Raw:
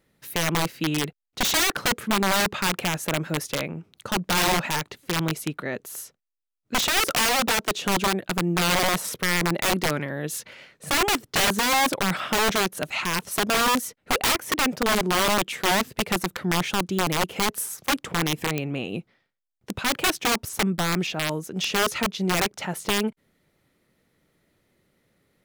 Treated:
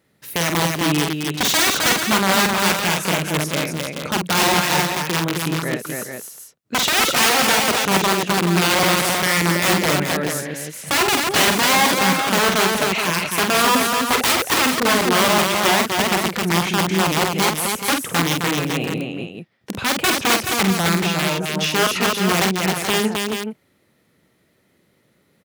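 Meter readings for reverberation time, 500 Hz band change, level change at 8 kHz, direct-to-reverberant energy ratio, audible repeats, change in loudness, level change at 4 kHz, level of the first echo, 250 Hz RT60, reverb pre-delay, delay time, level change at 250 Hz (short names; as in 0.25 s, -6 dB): none, +6.5 dB, +6.5 dB, none, 4, +6.5 dB, +6.5 dB, -5.5 dB, none, none, 47 ms, +6.5 dB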